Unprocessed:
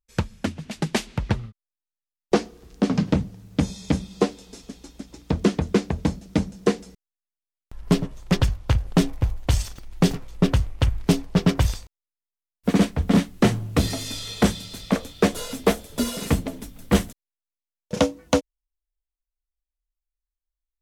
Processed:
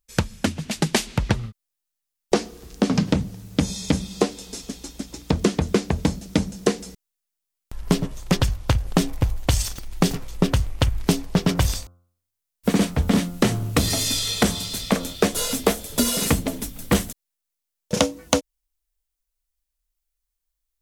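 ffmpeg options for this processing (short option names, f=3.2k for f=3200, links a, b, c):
-filter_complex "[0:a]asettb=1/sr,asplit=3[a][b][c];[a]atrim=end=11.454[d];[b]atrim=start=11.45:end=15.16,asetpts=PTS-STARTPTS,afade=t=in:d=0.004:c=qsin,afade=t=out:st=3.706:d=0.004:c=qsin,bandreject=f=87.44:t=h:w=4,bandreject=f=174.88:t=h:w=4,bandreject=f=262.32:t=h:w=4,bandreject=f=349.76:t=h:w=4,bandreject=f=437.2:t=h:w=4,bandreject=f=524.64:t=h:w=4,bandreject=f=612.08:t=h:w=4,bandreject=f=699.52:t=h:w=4,bandreject=f=786.96:t=h:w=4,bandreject=f=874.4:t=h:w=4,bandreject=f=961.84:t=h:w=4,bandreject=f=1.04928k:t=h:w=4,bandreject=f=1.13672k:t=h:w=4,bandreject=f=1.22416k:t=h:w=4,bandreject=f=1.3116k:t=h:w=4,bandreject=f=1.39904k:t=h:w=4,bandreject=f=1.48648k:t=h:w=4[e];[c]atrim=start=15.156[f];[d][e]acrossfade=d=0.004:c1=hsin:c2=qsin[g];[g][f]acrossfade=d=0.004:c1=qsin:c2=hsin,highshelf=f=4.4k:g=8.5,acompressor=threshold=-20dB:ratio=6,volume=5dB"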